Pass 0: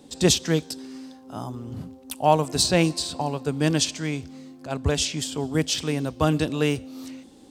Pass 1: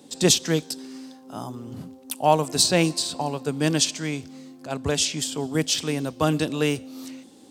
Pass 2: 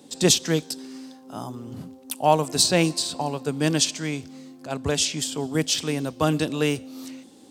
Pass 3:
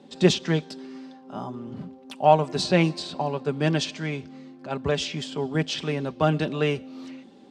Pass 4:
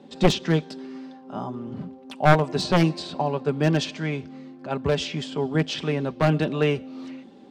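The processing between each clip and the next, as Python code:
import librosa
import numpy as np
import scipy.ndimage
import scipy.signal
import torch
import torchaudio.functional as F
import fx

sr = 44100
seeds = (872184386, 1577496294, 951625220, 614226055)

y1 = scipy.signal.sosfilt(scipy.signal.butter(2, 130.0, 'highpass', fs=sr, output='sos'), x)
y1 = fx.high_shelf(y1, sr, hz=5100.0, db=4.5)
y2 = y1
y3 = scipy.signal.sosfilt(scipy.signal.butter(2, 3000.0, 'lowpass', fs=sr, output='sos'), y2)
y3 = y3 + 0.44 * np.pad(y3, (int(5.1 * sr / 1000.0), 0))[:len(y3)]
y4 = np.minimum(y3, 2.0 * 10.0 ** (-17.5 / 20.0) - y3)
y4 = fx.high_shelf(y4, sr, hz=3800.0, db=-6.5)
y4 = y4 * librosa.db_to_amplitude(2.5)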